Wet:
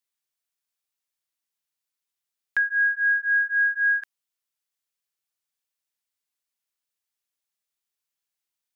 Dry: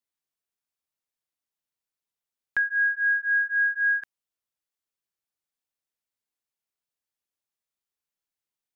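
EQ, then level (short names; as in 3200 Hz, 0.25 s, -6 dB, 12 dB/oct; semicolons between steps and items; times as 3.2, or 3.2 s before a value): tilt shelf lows -4.5 dB, about 1100 Hz; 0.0 dB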